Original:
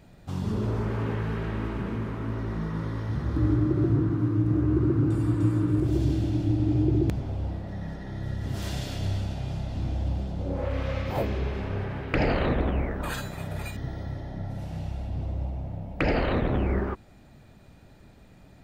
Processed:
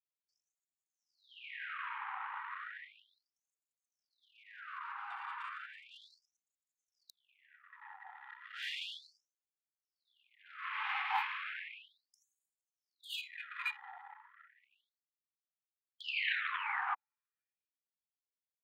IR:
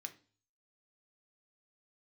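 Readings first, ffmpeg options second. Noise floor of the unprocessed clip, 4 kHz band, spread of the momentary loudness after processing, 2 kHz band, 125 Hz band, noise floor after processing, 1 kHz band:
-52 dBFS, -2.0 dB, 20 LU, -1.5 dB, under -40 dB, under -85 dBFS, -5.0 dB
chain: -af "anlmdn=1,highshelf=f=4100:t=q:w=1.5:g=-13,afftfilt=real='re*gte(b*sr/1024,730*pow(6700/730,0.5+0.5*sin(2*PI*0.34*pts/sr)))':imag='im*gte(b*sr/1024,730*pow(6700/730,0.5+0.5*sin(2*PI*0.34*pts/sr)))':win_size=1024:overlap=0.75,volume=1.41"

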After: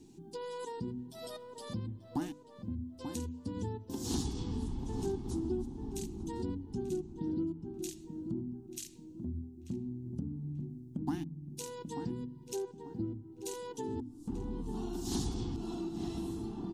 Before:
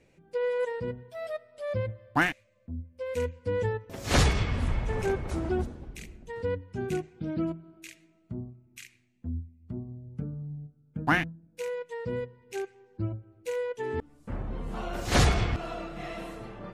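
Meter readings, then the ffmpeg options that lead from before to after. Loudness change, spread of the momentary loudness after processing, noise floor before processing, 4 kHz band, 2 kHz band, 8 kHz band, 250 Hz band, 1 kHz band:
-8.0 dB, 7 LU, -64 dBFS, -10.5 dB, -24.5 dB, -4.5 dB, -1.5 dB, -12.5 dB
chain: -filter_complex "[0:a]bandreject=f=50:t=h:w=6,bandreject=f=100:t=h:w=6,bandreject=f=150:t=h:w=6,bandreject=f=200:t=h:w=6,bandreject=f=250:t=h:w=6,bandreject=f=300:t=h:w=6,aexciter=amount=13.3:drive=9:freq=3500,firequalizer=gain_entry='entry(120,0);entry(260,12);entry(380,6);entry(550,-26);entry(810,1);entry(1300,-14);entry(4400,-23);entry(13000,-27)':delay=0.05:min_phase=1,acompressor=threshold=0.00708:ratio=3,asplit=2[s0][s1];[s1]adelay=888,lowpass=f=1300:p=1,volume=0.447,asplit=2[s2][s3];[s3]adelay=888,lowpass=f=1300:p=1,volume=0.38,asplit=2[s4][s5];[s5]adelay=888,lowpass=f=1300:p=1,volume=0.38,asplit=2[s6][s7];[s7]adelay=888,lowpass=f=1300:p=1,volume=0.38[s8];[s2][s4][s6][s8]amix=inputs=4:normalize=0[s9];[s0][s9]amix=inputs=2:normalize=0,volume=1.58"

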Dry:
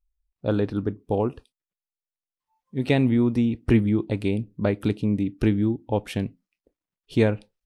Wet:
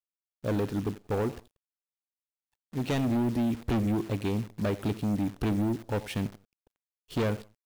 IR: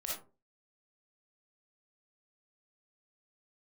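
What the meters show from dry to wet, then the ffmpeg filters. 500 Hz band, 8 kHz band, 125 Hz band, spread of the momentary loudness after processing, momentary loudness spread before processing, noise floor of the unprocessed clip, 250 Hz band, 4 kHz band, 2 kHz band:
-6.5 dB, no reading, -6.0 dB, 7 LU, 9 LU, under -85 dBFS, -6.0 dB, -3.0 dB, -6.0 dB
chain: -filter_complex "[0:a]asplit=2[s0][s1];[s1]adelay=90,lowpass=f=3500:p=1,volume=0.1,asplit=2[s2][s3];[s3]adelay=90,lowpass=f=3500:p=1,volume=0.3[s4];[s0][s2][s4]amix=inputs=3:normalize=0,asoftclip=type=hard:threshold=0.0841,acrusher=bits=8:dc=4:mix=0:aa=0.000001,volume=0.75"

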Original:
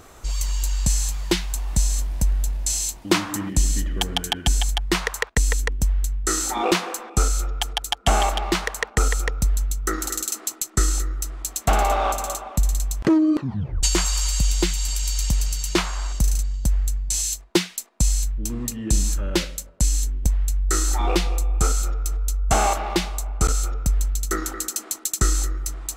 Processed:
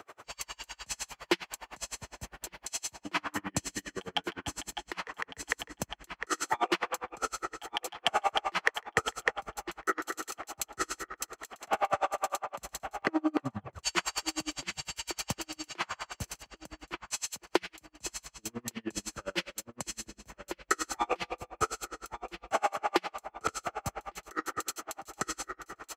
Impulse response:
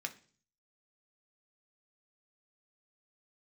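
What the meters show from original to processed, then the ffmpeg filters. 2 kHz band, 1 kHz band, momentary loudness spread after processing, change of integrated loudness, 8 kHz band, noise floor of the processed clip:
-4.5 dB, -6.0 dB, 12 LU, -11.5 dB, -14.0 dB, -73 dBFS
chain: -filter_complex "[0:a]highpass=f=87:w=0.5412,highpass=f=87:w=1.3066,acrossover=split=400 3600:gain=0.224 1 0.224[s0][s1][s2];[s0][s1][s2]amix=inputs=3:normalize=0,bandreject=f=3700:w=11,acompressor=threshold=0.0562:ratio=6,asplit=2[s3][s4];[s4]adelay=1156,lowpass=f=4200:p=1,volume=0.282,asplit=2[s5][s6];[s6]adelay=1156,lowpass=f=4200:p=1,volume=0.46,asplit=2[s7][s8];[s8]adelay=1156,lowpass=f=4200:p=1,volume=0.46,asplit=2[s9][s10];[s10]adelay=1156,lowpass=f=4200:p=1,volume=0.46,asplit=2[s11][s12];[s12]adelay=1156,lowpass=f=4200:p=1,volume=0.46[s13];[s3][s5][s7][s9][s11][s13]amix=inputs=6:normalize=0,asplit=2[s14][s15];[1:a]atrim=start_sample=2205[s16];[s15][s16]afir=irnorm=-1:irlink=0,volume=0.316[s17];[s14][s17]amix=inputs=2:normalize=0,aeval=exprs='val(0)*pow(10,-37*(0.5-0.5*cos(2*PI*9.8*n/s))/20)':c=same,volume=1.5"

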